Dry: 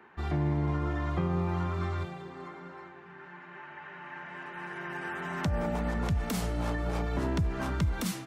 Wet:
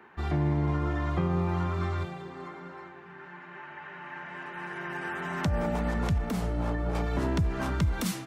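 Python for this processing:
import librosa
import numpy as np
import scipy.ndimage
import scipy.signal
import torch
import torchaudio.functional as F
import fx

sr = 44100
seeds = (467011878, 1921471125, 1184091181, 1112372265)

y = fx.high_shelf(x, sr, hz=2200.0, db=-10.0, at=(6.18, 6.95))
y = y * librosa.db_to_amplitude(2.0)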